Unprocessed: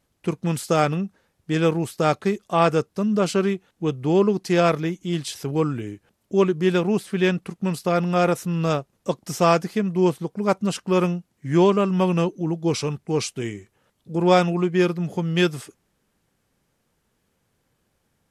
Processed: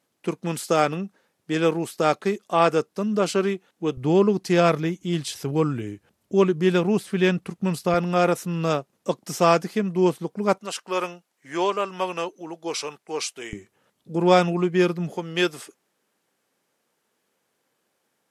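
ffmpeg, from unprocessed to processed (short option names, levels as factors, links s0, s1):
-af "asetnsamples=n=441:p=0,asendcmd='3.97 highpass f 55;7.94 highpass f 170;10.58 highpass f 580;13.53 highpass f 150;15.1 highpass f 320',highpass=220"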